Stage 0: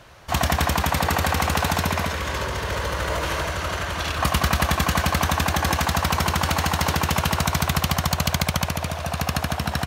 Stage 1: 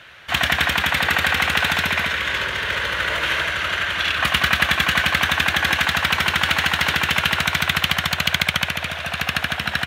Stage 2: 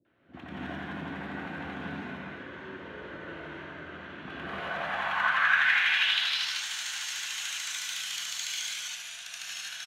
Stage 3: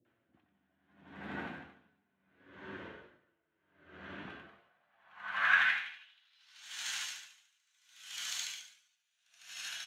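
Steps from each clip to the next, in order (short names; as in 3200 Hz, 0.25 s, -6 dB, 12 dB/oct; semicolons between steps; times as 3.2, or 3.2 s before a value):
HPF 110 Hz 6 dB/oct; band shelf 2300 Hz +12.5 dB; gain -3 dB
bands offset in time lows, highs 50 ms, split 460 Hz; non-linear reverb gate 0.28 s rising, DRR -7 dB; band-pass sweep 300 Hz -> 6700 Hz, 4.27–6.7; gain -8 dB
flange 0.63 Hz, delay 8.1 ms, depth 2.8 ms, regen +55%; dB-linear tremolo 0.72 Hz, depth 39 dB; gain +1.5 dB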